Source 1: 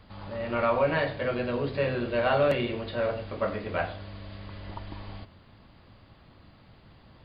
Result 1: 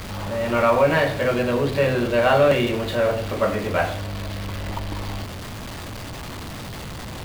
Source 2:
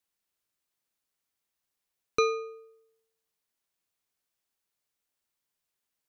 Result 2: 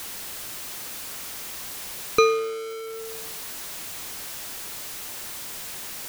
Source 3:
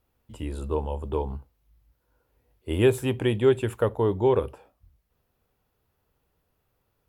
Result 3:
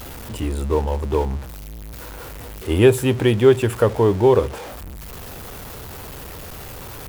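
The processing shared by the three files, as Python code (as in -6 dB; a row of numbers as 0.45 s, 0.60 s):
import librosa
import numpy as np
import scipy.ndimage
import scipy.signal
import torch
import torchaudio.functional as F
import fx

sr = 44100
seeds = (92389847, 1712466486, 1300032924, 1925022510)

y = x + 0.5 * 10.0 ** (-35.5 / 20.0) * np.sign(x)
y = y * librosa.db_to_amplitude(6.5)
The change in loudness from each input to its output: +6.5 LU, +0.5 LU, +7.0 LU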